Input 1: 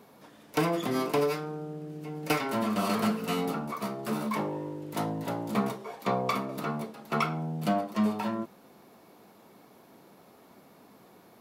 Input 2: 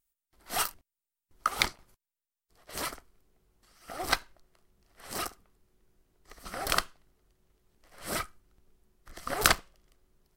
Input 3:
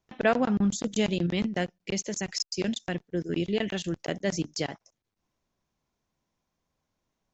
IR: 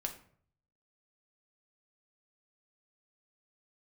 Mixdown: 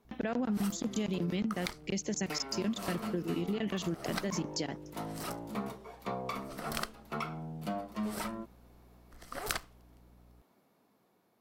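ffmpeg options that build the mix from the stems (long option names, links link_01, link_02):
-filter_complex "[0:a]dynaudnorm=framelen=690:gausssize=7:maxgain=8dB,volume=-16.5dB[link_01];[1:a]aeval=exprs='val(0)+0.00282*(sin(2*PI*60*n/s)+sin(2*PI*2*60*n/s)/2+sin(2*PI*3*60*n/s)/3+sin(2*PI*4*60*n/s)/4+sin(2*PI*5*60*n/s)/5)':channel_layout=same,adelay=50,volume=-7.5dB[link_02];[2:a]alimiter=limit=-22dB:level=0:latency=1:release=35,equalizer=frequency=240:width_type=o:width=1.1:gain=5.5,volume=-1.5dB[link_03];[link_01][link_02][link_03]amix=inputs=3:normalize=0,acompressor=threshold=-30dB:ratio=5"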